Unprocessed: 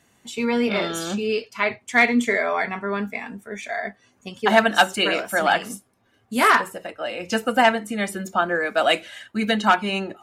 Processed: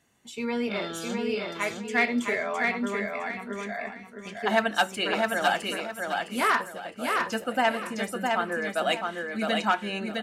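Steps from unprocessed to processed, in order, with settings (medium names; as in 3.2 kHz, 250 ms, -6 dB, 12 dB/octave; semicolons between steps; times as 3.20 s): feedback delay 660 ms, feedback 28%, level -3.5 dB; trim -7.5 dB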